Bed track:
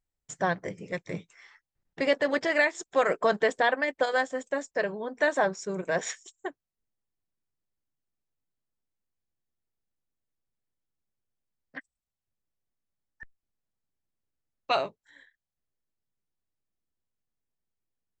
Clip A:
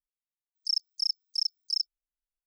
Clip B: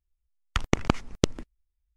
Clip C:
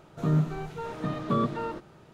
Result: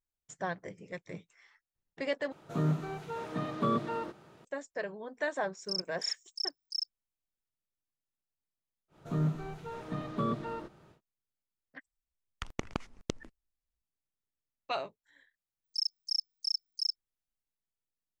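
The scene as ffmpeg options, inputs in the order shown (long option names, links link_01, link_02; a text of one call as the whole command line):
ffmpeg -i bed.wav -i cue0.wav -i cue1.wav -i cue2.wav -filter_complex "[3:a]asplit=2[link_01][link_02];[1:a]asplit=2[link_03][link_04];[0:a]volume=-8.5dB[link_05];[link_01]highpass=frequency=180:poles=1[link_06];[2:a]lowshelf=frequency=180:gain=-3.5[link_07];[link_05]asplit=2[link_08][link_09];[link_08]atrim=end=2.324[link_10];[link_06]atrim=end=2.13,asetpts=PTS-STARTPTS,volume=-2dB[link_11];[link_09]atrim=start=4.446[link_12];[link_03]atrim=end=2.46,asetpts=PTS-STARTPTS,volume=-7dB,afade=type=in:duration=0.004:curve=hsin,afade=type=out:start_time=2.456:duration=0.004:curve=hsin,adelay=5020[link_13];[link_02]atrim=end=2.13,asetpts=PTS-STARTPTS,volume=-6dB,afade=type=in:duration=0.1,afade=type=out:start_time=2.03:duration=0.1,adelay=8880[link_14];[link_07]atrim=end=1.96,asetpts=PTS-STARTPTS,volume=-12dB,afade=type=in:duration=0.004:curve=hsin,afade=type=out:start_time=1.956:duration=0.004:curve=hsin,adelay=523026S[link_15];[link_04]atrim=end=2.46,asetpts=PTS-STARTPTS,volume=-4dB,afade=type=in:duration=0.004:curve=hsin,afade=type=out:start_time=2.456:duration=0.004:curve=hsin,adelay=15090[link_16];[link_10][link_11]acrossfade=duration=0.004:curve1=hsin:curve2=hsin[link_17];[link_17][link_12]acrossfade=duration=0.004:curve1=hsin:curve2=hsin[link_18];[link_18][link_13][link_14][link_15][link_16]amix=inputs=5:normalize=0" out.wav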